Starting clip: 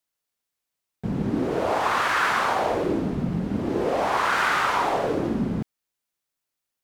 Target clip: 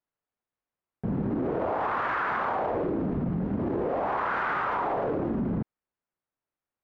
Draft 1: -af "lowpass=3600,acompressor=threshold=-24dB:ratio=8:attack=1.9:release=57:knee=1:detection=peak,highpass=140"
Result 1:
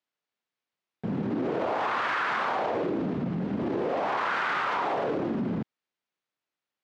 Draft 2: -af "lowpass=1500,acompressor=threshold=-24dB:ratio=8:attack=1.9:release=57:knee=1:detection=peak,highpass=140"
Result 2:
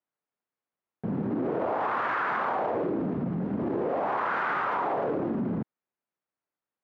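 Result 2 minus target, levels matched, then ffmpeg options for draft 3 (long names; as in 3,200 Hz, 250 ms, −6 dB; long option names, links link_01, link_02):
125 Hz band −2.5 dB
-af "lowpass=1500,acompressor=threshold=-24dB:ratio=8:attack=1.9:release=57:knee=1:detection=peak"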